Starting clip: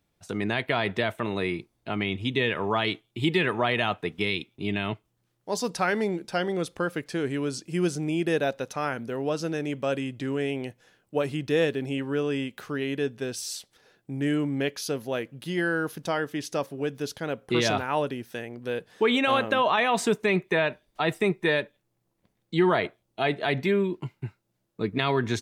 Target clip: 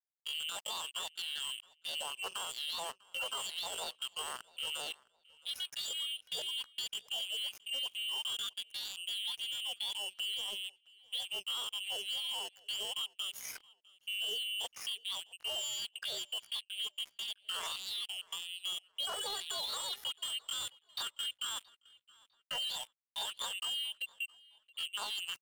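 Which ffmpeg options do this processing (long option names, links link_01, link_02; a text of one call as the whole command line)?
ffmpeg -i in.wav -filter_complex "[0:a]afftfilt=real='real(if(lt(b,272),68*(eq(floor(b/68),0)*2+eq(floor(b/68),1)*0+eq(floor(b/68),2)*3+eq(floor(b/68),3)*1)+mod(b,68),b),0)':imag='imag(if(lt(b,272),68*(eq(floor(b/68),0)*2+eq(floor(b/68),1)*0+eq(floor(b/68),2)*3+eq(floor(b/68),3)*1)+mod(b,68),b),0)':win_size=2048:overlap=0.75,afftdn=noise_reduction=21:noise_floor=-36,adynamicequalizer=threshold=0.00447:dfrequency=770:dqfactor=2:tfrequency=770:tqfactor=2:attack=5:release=100:ratio=0.375:range=3:mode=cutabove:tftype=bell,acrossover=split=920[link_01][link_02];[link_01]dynaudnorm=framelen=200:gausssize=3:maxgain=11.5dB[link_03];[link_03][link_02]amix=inputs=2:normalize=0,alimiter=limit=-14dB:level=0:latency=1:release=37,acompressor=threshold=-32dB:ratio=5,afreqshift=250,asoftclip=type=tanh:threshold=-34dB,acrusher=bits=5:mix=0:aa=0.5,asplit=2[link_04][link_05];[link_05]adelay=665,lowpass=frequency=3600:poles=1,volume=-23dB,asplit=2[link_06][link_07];[link_07]adelay=665,lowpass=frequency=3600:poles=1,volume=0.34[link_08];[link_06][link_08]amix=inputs=2:normalize=0[link_09];[link_04][link_09]amix=inputs=2:normalize=0,asetrate=66075,aresample=44100,atempo=0.66742" out.wav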